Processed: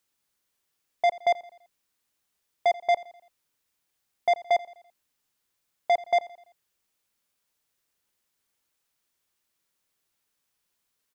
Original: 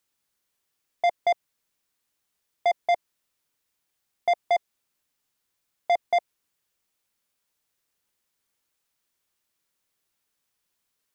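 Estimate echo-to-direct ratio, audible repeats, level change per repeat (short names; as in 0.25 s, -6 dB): -19.0 dB, 3, -6.5 dB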